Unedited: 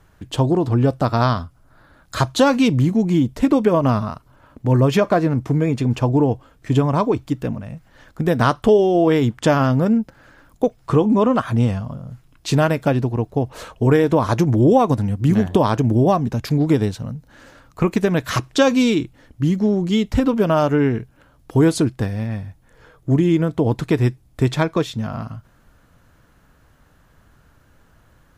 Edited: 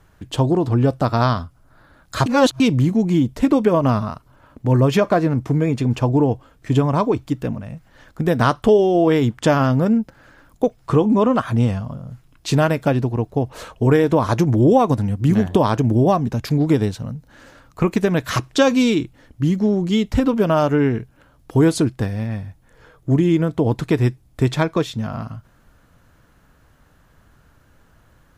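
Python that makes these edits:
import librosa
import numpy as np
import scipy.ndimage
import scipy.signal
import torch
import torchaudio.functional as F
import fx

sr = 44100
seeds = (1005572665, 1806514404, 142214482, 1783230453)

y = fx.edit(x, sr, fx.reverse_span(start_s=2.26, length_s=0.34), tone=tone)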